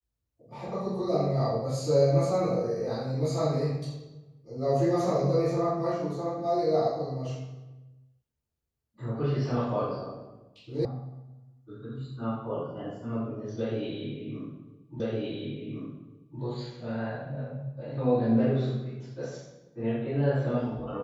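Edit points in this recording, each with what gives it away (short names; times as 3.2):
10.85 sound cut off
15 repeat of the last 1.41 s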